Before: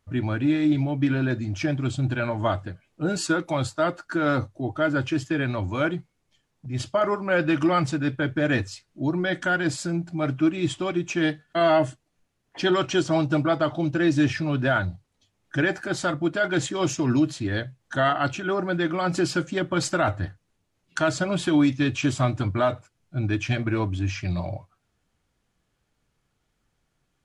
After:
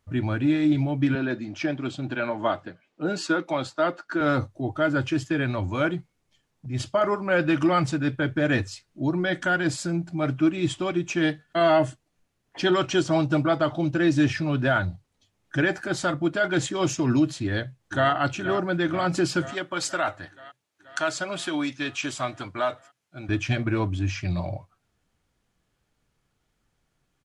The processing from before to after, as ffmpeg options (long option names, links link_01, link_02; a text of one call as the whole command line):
ffmpeg -i in.wav -filter_complex "[0:a]asettb=1/sr,asplit=3[link_01][link_02][link_03];[link_01]atrim=end=1.154[link_04];[link_02]atrim=start=1.15:end=4.21,asetpts=PTS-STARTPTS,afade=type=in:duration=0.004:curve=qsin,afade=type=out:start_time=3.056:duration=0.004:curve=qsin,acrossover=split=170 5900:gain=0.0631 1 0.224[link_05][link_06][link_07];[link_05][link_06][link_07]amix=inputs=3:normalize=0[link_08];[link_03]atrim=start=4.206[link_09];[link_04][link_08]acrossfade=duration=0.004:curve1=hsin:curve2=qsin[link_10];[link_10][link_09]acrossfade=duration=0.004:curve1=qsin:curve2=hsin,asplit=2[link_11][link_12];[link_12]afade=type=in:start_time=17.43:duration=0.01,afade=type=out:start_time=18.11:duration=0.01,aecho=0:1:480|960|1440|1920|2400|2880|3360|3840|4320|4800|5280|5760:0.251189|0.188391|0.141294|0.10597|0.0794777|0.0596082|0.0447062|0.0335296|0.0251472|0.0188604|0.0141453|0.010609[link_13];[link_11][link_13]amix=inputs=2:normalize=0,asettb=1/sr,asplit=3[link_14][link_15][link_16];[link_14]atrim=end=19.514[link_17];[link_15]atrim=start=19.51:end=23.29,asetpts=PTS-STARTPTS,afade=type=in:duration=0.004:curve=qsin,afade=type=out:start_time=3.776:duration=0.004:curve=qsin,highpass=frequency=750:poles=1[link_18];[link_16]atrim=start=23.286[link_19];[link_17][link_18]acrossfade=duration=0.004:curve1=hsin:curve2=qsin[link_20];[link_20][link_19]acrossfade=duration=0.004:curve1=qsin:curve2=hsin" out.wav